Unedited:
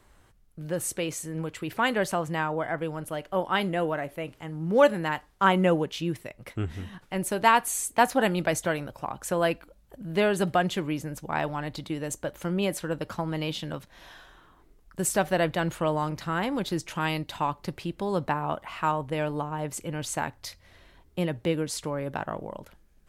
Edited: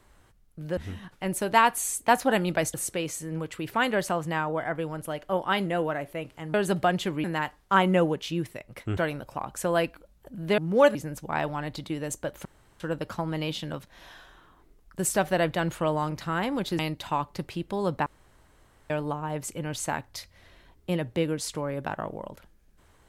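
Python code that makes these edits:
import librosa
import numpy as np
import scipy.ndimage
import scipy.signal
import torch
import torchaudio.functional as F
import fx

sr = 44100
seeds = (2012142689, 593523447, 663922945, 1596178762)

y = fx.edit(x, sr, fx.swap(start_s=4.57, length_s=0.37, other_s=10.25, other_length_s=0.7),
    fx.move(start_s=6.67, length_s=1.97, to_s=0.77),
    fx.room_tone_fill(start_s=12.45, length_s=0.35),
    fx.cut(start_s=16.79, length_s=0.29),
    fx.room_tone_fill(start_s=18.35, length_s=0.84), tone=tone)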